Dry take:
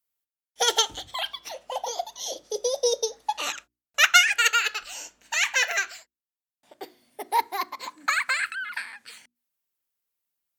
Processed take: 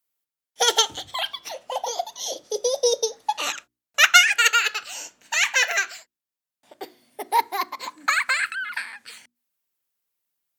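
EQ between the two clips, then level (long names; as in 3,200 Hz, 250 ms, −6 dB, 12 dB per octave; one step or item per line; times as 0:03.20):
high-pass filter 76 Hz 24 dB per octave
+3.0 dB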